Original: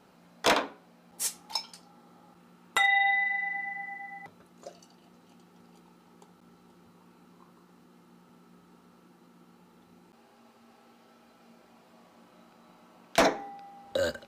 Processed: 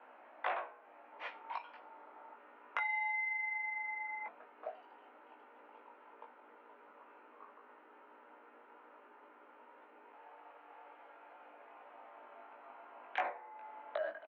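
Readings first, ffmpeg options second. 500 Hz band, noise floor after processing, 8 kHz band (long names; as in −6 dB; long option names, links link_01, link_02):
−12.5 dB, −61 dBFS, below −40 dB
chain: -filter_complex "[0:a]highpass=frequency=160:width_type=q:width=0.5412,highpass=frequency=160:width_type=q:width=1.307,lowpass=frequency=2500:width_type=q:width=0.5176,lowpass=frequency=2500:width_type=q:width=0.7071,lowpass=frequency=2500:width_type=q:width=1.932,afreqshift=66,acompressor=threshold=-42dB:ratio=4,lowshelf=frequency=460:width_type=q:width=1.5:gain=-11,asplit=2[link_01][link_02];[link_02]adelay=19,volume=-3.5dB[link_03];[link_01][link_03]amix=inputs=2:normalize=0,volume=1.5dB"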